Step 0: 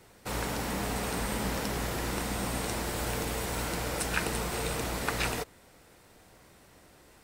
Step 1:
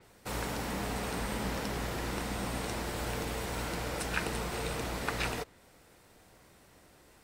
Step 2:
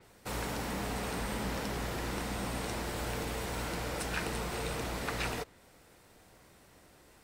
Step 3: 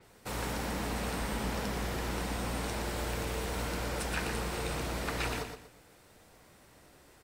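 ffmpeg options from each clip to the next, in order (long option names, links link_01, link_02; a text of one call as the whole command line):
ffmpeg -i in.wav -af "adynamicequalizer=threshold=0.00251:dfrequency=6200:dqfactor=0.7:tfrequency=6200:tqfactor=0.7:attack=5:release=100:ratio=0.375:range=2.5:mode=cutabove:tftype=highshelf,volume=-2.5dB" out.wav
ffmpeg -i in.wav -af "asoftclip=type=tanh:threshold=-25dB" out.wav
ffmpeg -i in.wav -af "aecho=1:1:119|238|357|476:0.447|0.134|0.0402|0.0121" out.wav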